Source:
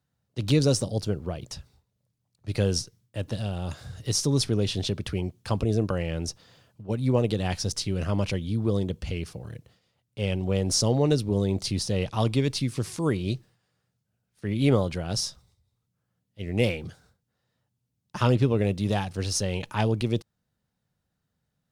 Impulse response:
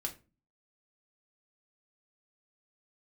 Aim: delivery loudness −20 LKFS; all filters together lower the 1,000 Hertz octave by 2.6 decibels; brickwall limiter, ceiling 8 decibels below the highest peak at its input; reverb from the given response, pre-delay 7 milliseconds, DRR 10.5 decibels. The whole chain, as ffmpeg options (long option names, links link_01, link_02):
-filter_complex "[0:a]equalizer=frequency=1000:width_type=o:gain=-3.5,alimiter=limit=-18.5dB:level=0:latency=1,asplit=2[link_01][link_02];[1:a]atrim=start_sample=2205,adelay=7[link_03];[link_02][link_03]afir=irnorm=-1:irlink=0,volume=-11dB[link_04];[link_01][link_04]amix=inputs=2:normalize=0,volume=10dB"